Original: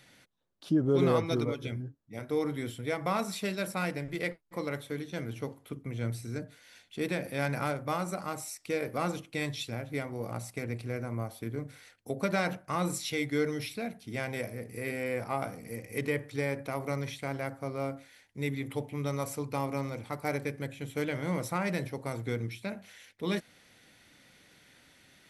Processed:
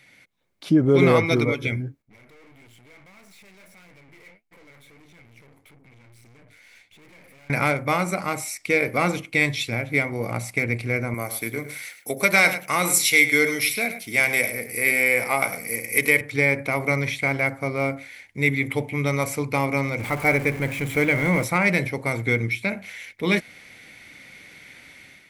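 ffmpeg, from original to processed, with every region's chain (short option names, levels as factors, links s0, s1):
-filter_complex "[0:a]asettb=1/sr,asplit=3[s0][s1][s2];[s0]atrim=end=2.024[s3];[s1]atrim=start=2.02:end=7.5,asetpts=PTS-STARTPTS,afade=t=in:d=0.004:c=qsin,afade=t=out:st=5.476:d=0.004:c=qsin,acompressor=threshold=0.00501:ratio=2:attack=3.2:release=140:knee=1:detection=peak,flanger=delay=5.8:depth=9.2:regen=64:speed=1.6:shape=triangular,aeval=exprs='(tanh(1120*val(0)+0.75)-tanh(0.75))/1120':c=same[s4];[s2]atrim=start=7.496[s5];[s3][s4]acrossfade=d=0.004:c1=hsin:c2=qsin[s6];[s6][s5]acrossfade=d=0.004:c1=qsin:c2=hsin,asettb=1/sr,asplit=3[s7][s8][s9];[s7]atrim=end=11.144[s10];[s8]atrim=start=11.14:end=16.21,asetpts=PTS-STARTPTS,afade=t=in:d=0.004:c=qsin,afade=t=out:st=5.066:d=0.004:c=qsin,aemphasis=mode=production:type=bsi,aecho=1:1:104:0.251,atrim=end_sample=223587[s11];[s9]atrim=start=16.206[s12];[s10][s11]acrossfade=d=0.004:c1=hsin:c2=qsin[s13];[s13][s12]acrossfade=d=0.004:c1=qsin:c2=hsin,asettb=1/sr,asplit=3[s14][s15][s16];[s14]atrim=end=19.994[s17];[s15]atrim=start=19.99:end=21.44,asetpts=PTS-STARTPTS,afade=t=in:d=0.004:c=qsin,afade=t=out:st=1.446:d=0.004:c=qsin,aeval=exprs='val(0)+0.5*0.0106*sgn(val(0))':c=same,equalizer=f=4200:t=o:w=1.6:g=-5[s18];[s16]atrim=start=21.436[s19];[s17][s18]acrossfade=d=0.004:c1=hsin:c2=qsin[s20];[s20][s19]acrossfade=d=0.004:c1=qsin:c2=hsin,equalizer=f=2200:t=o:w=0.27:g=14.5,dynaudnorm=f=230:g=3:m=2.82"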